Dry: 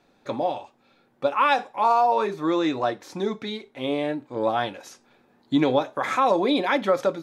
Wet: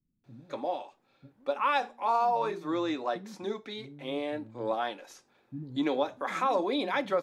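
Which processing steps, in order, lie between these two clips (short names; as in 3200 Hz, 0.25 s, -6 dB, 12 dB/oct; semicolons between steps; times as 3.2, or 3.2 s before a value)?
bands offset in time lows, highs 0.24 s, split 200 Hz; gain -7 dB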